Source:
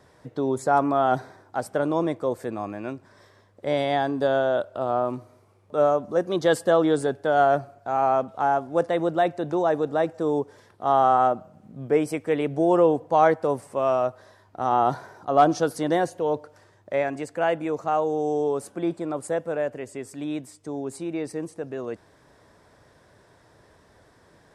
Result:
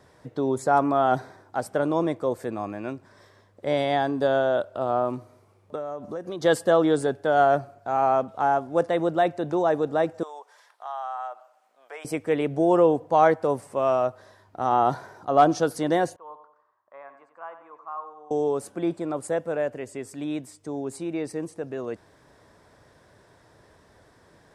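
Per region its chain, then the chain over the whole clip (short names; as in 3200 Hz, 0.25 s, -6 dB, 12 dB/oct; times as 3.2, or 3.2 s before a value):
5.75–6.42 compressor 8:1, threshold -29 dBFS + mismatched tape noise reduction encoder only
10.23–12.05 HPF 740 Hz 24 dB/oct + compressor 2:1, threshold -39 dBFS
16.16–18.31 band-pass 1100 Hz, Q 8.9 + feedback echo 92 ms, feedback 39%, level -10.5 dB
whole clip: dry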